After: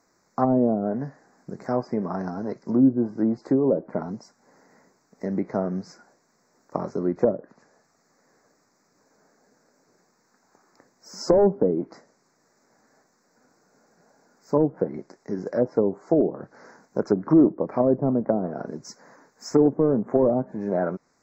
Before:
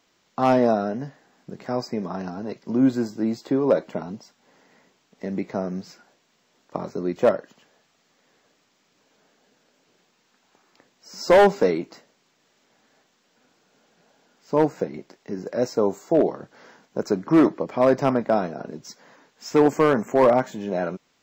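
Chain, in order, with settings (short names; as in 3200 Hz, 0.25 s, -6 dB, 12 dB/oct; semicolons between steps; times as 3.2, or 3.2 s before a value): treble ducked by the level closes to 420 Hz, closed at -16.5 dBFS; Butterworth band-stop 3100 Hz, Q 0.95; gain +1.5 dB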